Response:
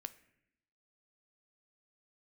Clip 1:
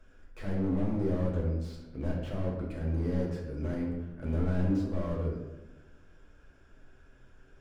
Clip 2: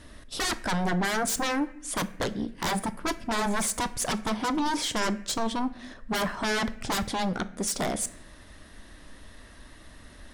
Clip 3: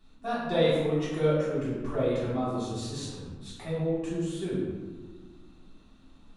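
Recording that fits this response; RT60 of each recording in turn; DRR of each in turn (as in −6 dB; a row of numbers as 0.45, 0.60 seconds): 2; 1.1, 0.75, 1.6 seconds; −3.0, 11.5, −11.0 decibels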